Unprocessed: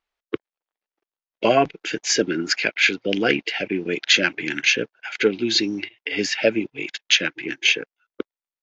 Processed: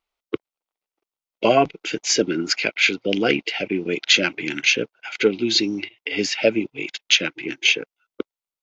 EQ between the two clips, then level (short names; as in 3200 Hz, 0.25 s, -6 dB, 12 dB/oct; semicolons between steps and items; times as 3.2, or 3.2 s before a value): bell 1700 Hz -10.5 dB 0.23 oct; +1.0 dB